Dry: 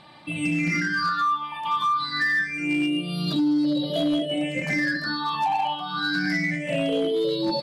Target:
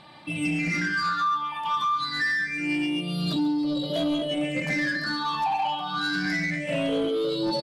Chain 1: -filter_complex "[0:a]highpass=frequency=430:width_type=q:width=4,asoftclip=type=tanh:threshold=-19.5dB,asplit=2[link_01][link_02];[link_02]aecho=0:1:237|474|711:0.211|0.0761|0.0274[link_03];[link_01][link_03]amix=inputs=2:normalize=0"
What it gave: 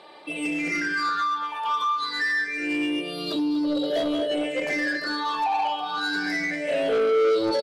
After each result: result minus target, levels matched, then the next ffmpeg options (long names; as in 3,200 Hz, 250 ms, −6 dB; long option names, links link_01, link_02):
echo 100 ms late; 500 Hz band +5.0 dB
-filter_complex "[0:a]highpass=frequency=430:width_type=q:width=4,asoftclip=type=tanh:threshold=-19.5dB,asplit=2[link_01][link_02];[link_02]aecho=0:1:137|274|411:0.211|0.0761|0.0274[link_03];[link_01][link_03]amix=inputs=2:normalize=0"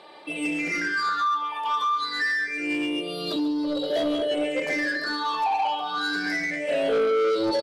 500 Hz band +4.5 dB
-filter_complex "[0:a]asoftclip=type=tanh:threshold=-19.5dB,asplit=2[link_01][link_02];[link_02]aecho=0:1:137|274|411:0.211|0.0761|0.0274[link_03];[link_01][link_03]amix=inputs=2:normalize=0"